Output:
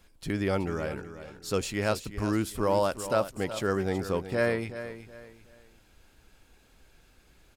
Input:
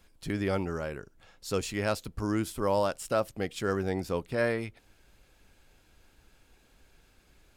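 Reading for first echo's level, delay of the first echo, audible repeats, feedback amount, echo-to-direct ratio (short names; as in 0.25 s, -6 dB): -12.0 dB, 0.373 s, 3, 31%, -11.5 dB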